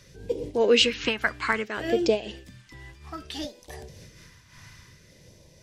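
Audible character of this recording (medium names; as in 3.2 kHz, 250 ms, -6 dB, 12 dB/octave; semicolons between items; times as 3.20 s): phasing stages 2, 0.6 Hz, lowest notch 490–1300 Hz; random flutter of the level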